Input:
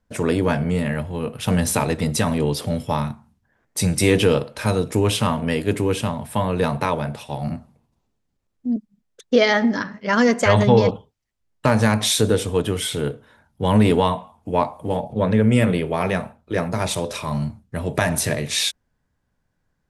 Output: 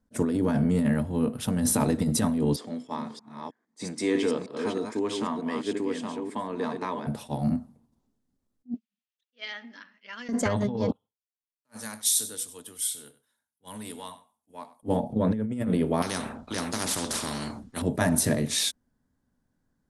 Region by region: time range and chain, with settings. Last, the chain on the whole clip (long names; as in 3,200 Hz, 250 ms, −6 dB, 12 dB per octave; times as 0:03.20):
0:02.56–0:07.07: delay that plays each chunk backwards 317 ms, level −5 dB + loudspeaker in its box 460–6,400 Hz, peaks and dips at 560 Hz −10 dB, 810 Hz −6 dB, 1,400 Hz −8 dB, 2,800 Hz −7 dB, 4,000 Hz −6 dB, 5,700 Hz −7 dB
0:08.74–0:10.29: resonant band-pass 2,700 Hz, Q 4.2 + one half of a high-frequency compander encoder only
0:10.92–0:14.83: first-order pre-emphasis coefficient 0.97 + single-tap delay 97 ms −15 dB + multiband upward and downward expander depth 40%
0:16.02–0:17.82: high-frequency loss of the air 67 metres + every bin compressed towards the loudest bin 4 to 1
whole clip: graphic EQ with 15 bands 250 Hz +11 dB, 2,500 Hz −7 dB, 10,000 Hz +4 dB; compressor whose output falls as the input rises −17 dBFS, ratio −1; level that may rise only so fast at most 480 dB per second; level −7 dB